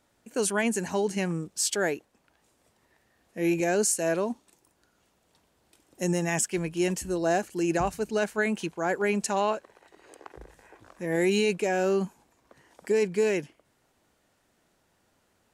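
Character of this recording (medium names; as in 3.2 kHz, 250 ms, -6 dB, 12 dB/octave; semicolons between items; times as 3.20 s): noise floor -70 dBFS; spectral tilt -4.0 dB/octave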